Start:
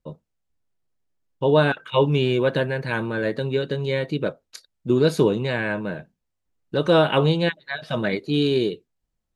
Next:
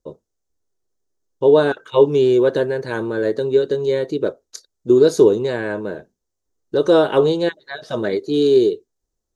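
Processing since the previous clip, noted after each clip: fifteen-band EQ 160 Hz -8 dB, 400 Hz +10 dB, 2500 Hz -10 dB, 6300 Hz +10 dB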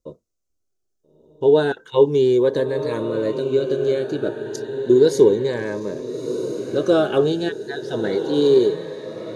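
diffused feedback echo 1.33 s, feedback 50%, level -9 dB; cascading phaser rising 0.32 Hz; gain -1 dB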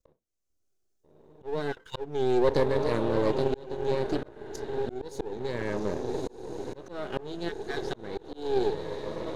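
half-wave gain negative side -12 dB; auto swell 0.617 s; Doppler distortion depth 0.16 ms

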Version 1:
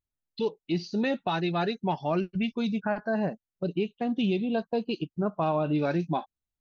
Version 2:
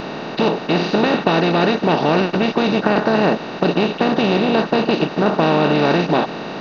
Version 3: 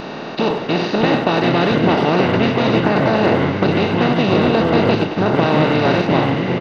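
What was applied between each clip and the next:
per-bin compression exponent 0.2; gain +4 dB
echoes that change speed 0.505 s, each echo -5 st, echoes 2; speakerphone echo 0.1 s, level -8 dB; ending taper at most 220 dB/s; gain -1 dB

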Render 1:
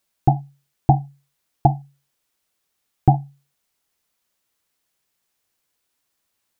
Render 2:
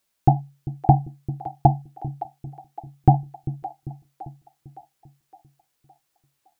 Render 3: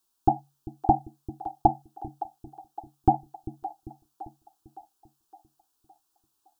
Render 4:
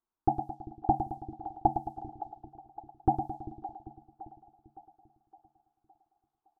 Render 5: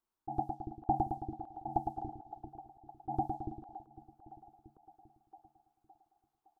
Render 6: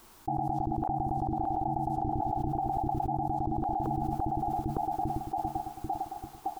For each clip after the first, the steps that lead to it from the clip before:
split-band echo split 440 Hz, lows 0.395 s, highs 0.563 s, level -13.5 dB
fixed phaser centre 560 Hz, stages 6
feedback echo 0.109 s, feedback 52%, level -8.5 dB; low-pass opened by the level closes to 1300 Hz, open at -24 dBFS; gain -5.5 dB
auto swell 0.128 s; gain +1 dB
low shelf 180 Hz +4.5 dB; fast leveller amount 100%; gain -5.5 dB

